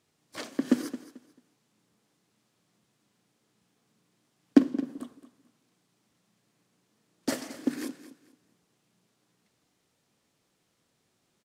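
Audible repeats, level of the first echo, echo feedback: 2, −15.0 dB, 25%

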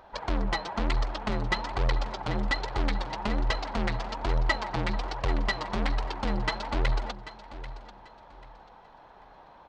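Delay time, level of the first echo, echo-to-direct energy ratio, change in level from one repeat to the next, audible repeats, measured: 789 ms, −14.5 dB, −14.0 dB, −11.5 dB, 2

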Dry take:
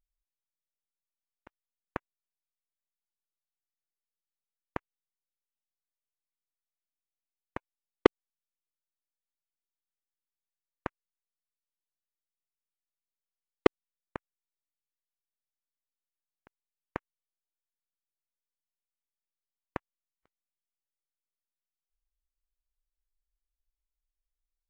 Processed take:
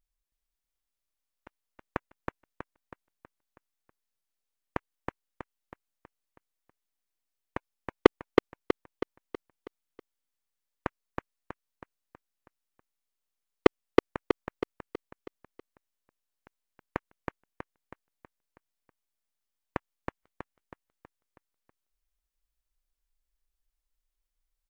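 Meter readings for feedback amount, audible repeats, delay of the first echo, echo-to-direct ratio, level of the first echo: 48%, 6, 322 ms, −2.0 dB, −3.0 dB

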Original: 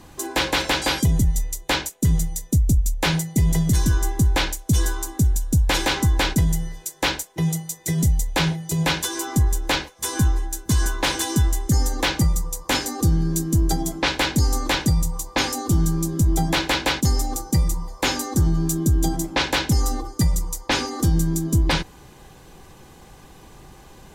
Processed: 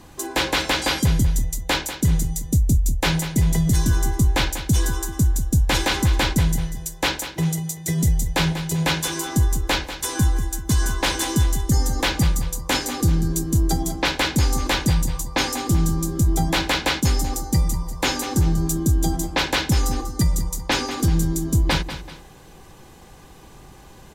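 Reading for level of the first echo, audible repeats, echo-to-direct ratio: −11.5 dB, 2, −11.0 dB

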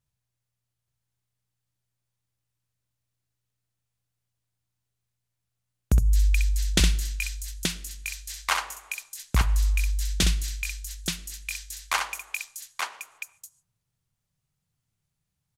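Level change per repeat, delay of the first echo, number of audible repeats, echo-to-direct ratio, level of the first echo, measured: repeats not evenly spaced, 64 ms, 2, −2.0 dB, −5.5 dB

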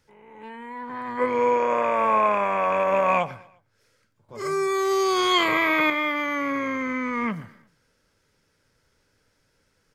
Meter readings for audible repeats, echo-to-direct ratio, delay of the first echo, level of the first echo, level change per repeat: 2, −21.0 dB, 118 ms, −22.0 dB, −7.0 dB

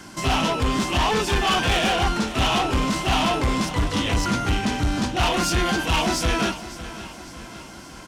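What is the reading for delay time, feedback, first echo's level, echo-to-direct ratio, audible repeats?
555 ms, 53%, −15.0 dB, −13.5 dB, 4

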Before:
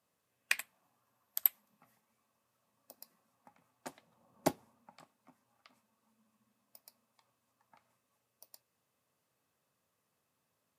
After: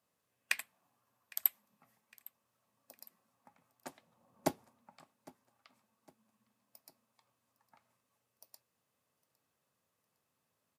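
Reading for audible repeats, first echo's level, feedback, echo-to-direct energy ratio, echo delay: 2, −23.0 dB, 44%, −22.0 dB, 808 ms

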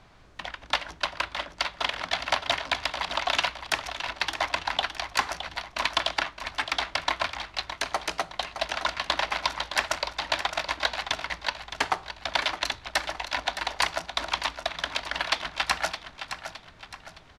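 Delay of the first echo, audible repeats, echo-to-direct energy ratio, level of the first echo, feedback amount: 615 ms, 4, −9.0 dB, −10.0 dB, 41%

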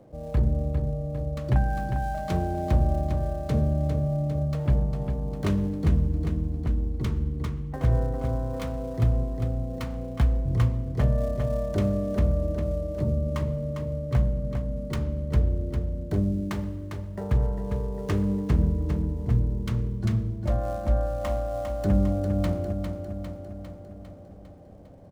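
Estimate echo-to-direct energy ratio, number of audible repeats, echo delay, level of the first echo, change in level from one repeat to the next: −5.0 dB, 7, 402 ms, −7.0 dB, −4.5 dB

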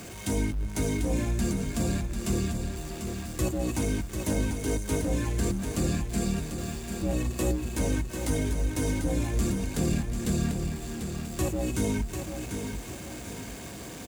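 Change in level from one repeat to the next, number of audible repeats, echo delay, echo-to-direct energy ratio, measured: −7.5 dB, 3, 744 ms, −6.0 dB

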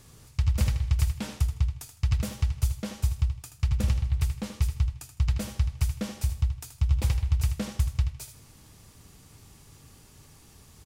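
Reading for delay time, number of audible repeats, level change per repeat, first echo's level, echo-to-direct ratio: 79 ms, 2, −13.0 dB, −10.0 dB, −10.0 dB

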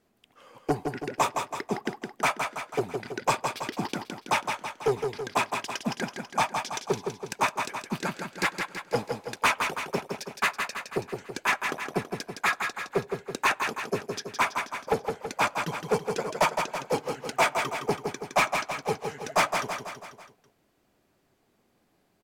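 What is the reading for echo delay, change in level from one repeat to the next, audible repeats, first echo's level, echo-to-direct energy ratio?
164 ms, −5.5 dB, 5, −5.5 dB, −4.0 dB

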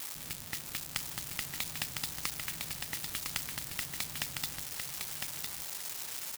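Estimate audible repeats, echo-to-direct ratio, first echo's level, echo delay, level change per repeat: 2, −4.5 dB, −4.5 dB, 1,006 ms, −14.0 dB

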